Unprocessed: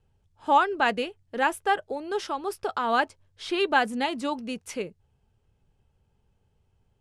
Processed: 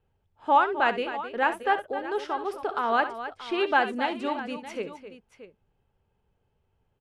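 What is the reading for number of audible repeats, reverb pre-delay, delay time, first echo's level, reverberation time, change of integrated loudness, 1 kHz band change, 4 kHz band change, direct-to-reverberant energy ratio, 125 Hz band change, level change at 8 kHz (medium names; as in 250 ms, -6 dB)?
3, no reverb, 65 ms, -13.0 dB, no reverb, 0.0 dB, +0.5 dB, -3.5 dB, no reverb, no reading, under -10 dB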